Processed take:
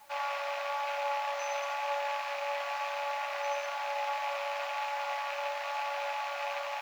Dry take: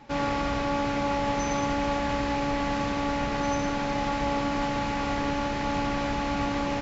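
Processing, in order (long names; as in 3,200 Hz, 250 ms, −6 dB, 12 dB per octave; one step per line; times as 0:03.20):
loose part that buzzes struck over −32 dBFS, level −23 dBFS
Chebyshev high-pass filter 570 Hz, order 8
high-shelf EQ 3,000 Hz −5 dB
bit-depth reduction 10 bits, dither triangular
flanger 1 Hz, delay 9.2 ms, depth 1.1 ms, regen −45%
level +1 dB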